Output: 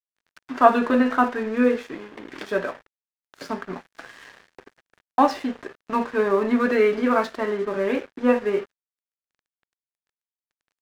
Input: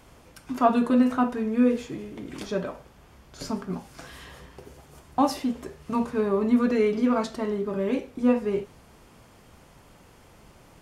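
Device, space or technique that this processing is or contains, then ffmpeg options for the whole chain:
pocket radio on a weak battery: -af "highpass=320,lowpass=3.8k,aeval=exprs='sgn(val(0))*max(abs(val(0))-0.00447,0)':c=same,equalizer=f=1.7k:t=o:w=0.54:g=7.5,volume=6dB"

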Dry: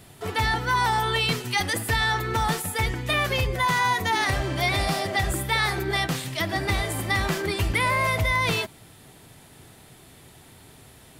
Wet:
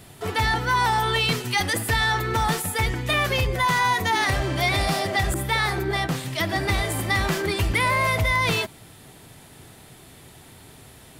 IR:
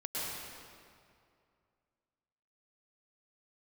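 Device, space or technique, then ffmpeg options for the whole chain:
parallel distortion: -filter_complex "[0:a]asplit=2[a][b];[b]asoftclip=type=hard:threshold=-25.5dB,volume=-9dB[c];[a][c]amix=inputs=2:normalize=0,asettb=1/sr,asplit=3[d][e][f];[d]atrim=end=5.344[g];[e]atrim=start=5.34:end=6.39,asetpts=PTS-STARTPTS,afade=t=in:d=0.004:c=qsin,afade=t=out:st=1.046:d=0.004:c=qsin,adynamicequalizer=threshold=0.0158:dfrequency=1700:dqfactor=0.7:tfrequency=1700:tqfactor=0.7:attack=5:release=100:ratio=0.375:range=3:mode=cutabove:tftype=highshelf[h];[f]atrim=start=6.386[i];[g][h]acrossfade=d=0.004:c1=hsin:c2=qsin[j];[j][i]acrossfade=d=0.004:c1=qsin:c2=hsin"

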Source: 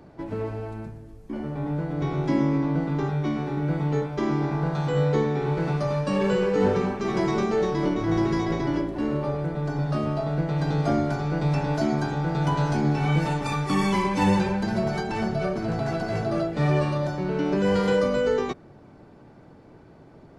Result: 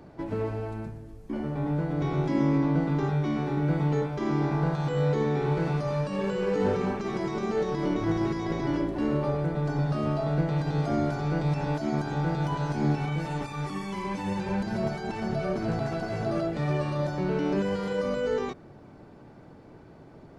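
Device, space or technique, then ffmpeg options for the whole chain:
de-esser from a sidechain: -filter_complex "[0:a]asplit=2[a][b];[b]highpass=4.3k,apad=whole_len=899082[c];[a][c]sidechaincompress=threshold=-49dB:ratio=8:attack=1.3:release=44"

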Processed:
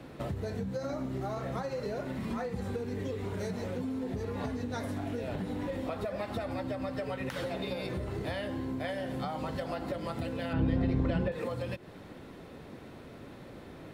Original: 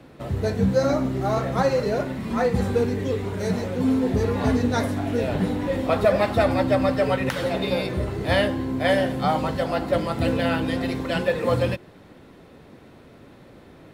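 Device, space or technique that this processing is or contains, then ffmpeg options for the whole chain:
serial compression, leveller first: -filter_complex "[0:a]acompressor=threshold=-23dB:ratio=6,acompressor=threshold=-33dB:ratio=5,asettb=1/sr,asplit=3[a][b][c];[a]atrim=end=10.534[d];[b]atrim=start=10.53:end=11.32,asetpts=PTS-STARTPTS,afade=t=in:d=0.004:c=qsin,afade=t=out:st=0.786:d=0.004:c=qsin,aemphasis=mode=reproduction:type=riaa[e];[c]atrim=start=11.316[f];[d][e]acrossfade=d=0.004:c1=hsin:c2=qsin[g];[g][f]acrossfade=d=0.004:c1=qsin:c2=hsin"

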